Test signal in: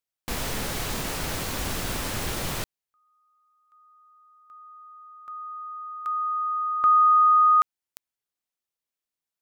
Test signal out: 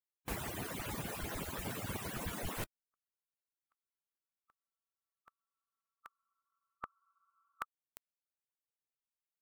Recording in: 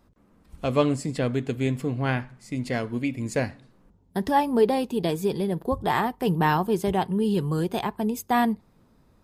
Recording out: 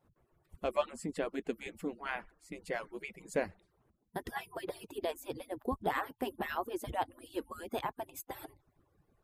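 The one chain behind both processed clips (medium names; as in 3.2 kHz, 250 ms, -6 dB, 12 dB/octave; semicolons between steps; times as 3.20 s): harmonic-percussive separation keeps percussive; peaking EQ 5 kHz -7.5 dB 1.2 oct; trim -6 dB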